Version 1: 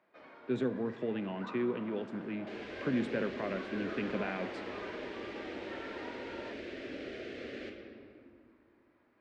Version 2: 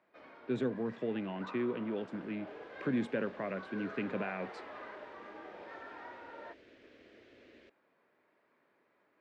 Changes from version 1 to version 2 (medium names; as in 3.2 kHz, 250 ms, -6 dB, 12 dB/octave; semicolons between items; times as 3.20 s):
second sound -10.0 dB; reverb: off